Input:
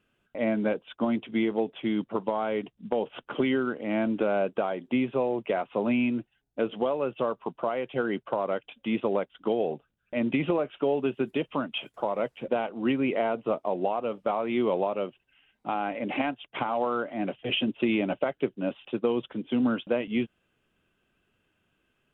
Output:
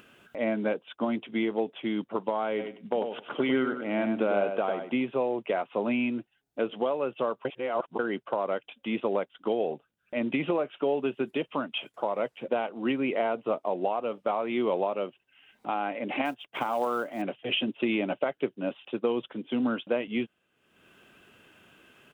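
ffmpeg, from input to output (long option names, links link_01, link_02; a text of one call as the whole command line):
ffmpeg -i in.wav -filter_complex "[0:a]asplit=3[link_01][link_02][link_03];[link_01]afade=type=out:start_time=2.58:duration=0.02[link_04];[link_02]aecho=1:1:99|198|297:0.447|0.0804|0.0145,afade=type=in:start_time=2.58:duration=0.02,afade=type=out:start_time=5.01:duration=0.02[link_05];[link_03]afade=type=in:start_time=5.01:duration=0.02[link_06];[link_04][link_05][link_06]amix=inputs=3:normalize=0,asettb=1/sr,asplit=3[link_07][link_08][link_09];[link_07]atrim=end=16.254[link_10];[link_08]atrim=start=16.25:end=17.22,asetpts=PTS-STARTPTS,afade=type=in:duration=0.004:curve=qsin,afade=type=out:start_time=0.966:duration=0.004:curve=qsin,acrusher=bits=7:mode=log:mix=0:aa=0.000001[link_11];[link_09]atrim=start=17.216[link_12];[link_10][link_11]acrossfade=duration=0.004:curve1=hsin:curve2=qsin[link_13];[link_13][link_12]acrossfade=duration=0.004:curve1=qsin:curve2=hsin,asplit=3[link_14][link_15][link_16];[link_14]atrim=end=7.452[link_17];[link_15]atrim=start=7.448:end=7.992,asetpts=PTS-STARTPTS,areverse[link_18];[link_16]atrim=start=7.988[link_19];[link_17][link_18]acrossfade=duration=0.004:curve1=hsin:curve2=hsin[link_20];[link_20][link_19]acrossfade=duration=0.004:curve1=hsin:curve2=hsin,highpass=frequency=230:poles=1,acompressor=mode=upward:threshold=-42dB:ratio=2.5" out.wav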